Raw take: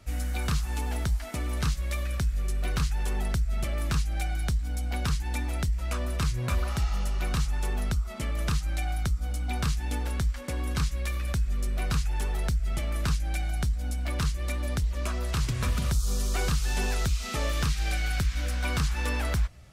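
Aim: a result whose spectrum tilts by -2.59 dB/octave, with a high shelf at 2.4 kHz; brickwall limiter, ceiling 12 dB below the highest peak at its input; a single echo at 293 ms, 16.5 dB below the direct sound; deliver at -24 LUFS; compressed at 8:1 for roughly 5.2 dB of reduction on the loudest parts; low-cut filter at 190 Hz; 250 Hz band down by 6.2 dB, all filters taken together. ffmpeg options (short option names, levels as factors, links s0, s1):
-af "highpass=190,equalizer=f=250:t=o:g=-5.5,highshelf=f=2400:g=7,acompressor=threshold=0.0224:ratio=8,alimiter=level_in=1.58:limit=0.0631:level=0:latency=1,volume=0.631,aecho=1:1:293:0.15,volume=5.31"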